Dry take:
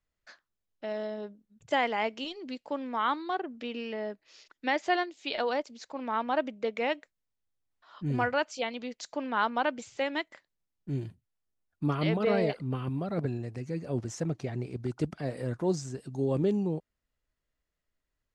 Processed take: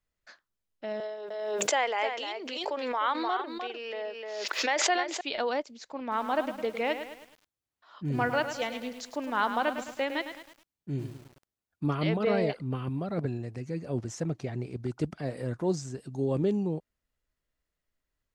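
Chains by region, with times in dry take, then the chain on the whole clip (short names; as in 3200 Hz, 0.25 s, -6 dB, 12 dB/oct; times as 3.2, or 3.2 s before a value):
1–5.21 HPF 390 Hz 24 dB/oct + echo 0.303 s -8 dB + backwards sustainer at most 29 dB/s
6.01–11.85 HPF 48 Hz 6 dB/oct + lo-fi delay 0.106 s, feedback 55%, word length 8-bit, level -9 dB
whole clip: dry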